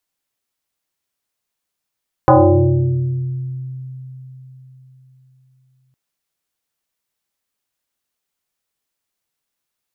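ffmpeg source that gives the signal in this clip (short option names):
-f lavfi -i "aevalsrc='0.562*pow(10,-3*t/4.15)*sin(2*PI*130*t+4.5*pow(10,-3*t/2.03)*sin(2*PI*1.72*130*t))':d=3.66:s=44100"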